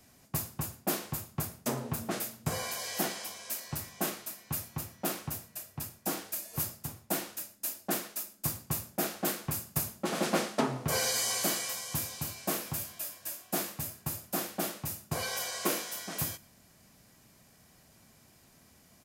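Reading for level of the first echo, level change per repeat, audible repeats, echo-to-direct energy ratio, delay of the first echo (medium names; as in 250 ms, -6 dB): -23.5 dB, no regular repeats, 1, -23.5 dB, 114 ms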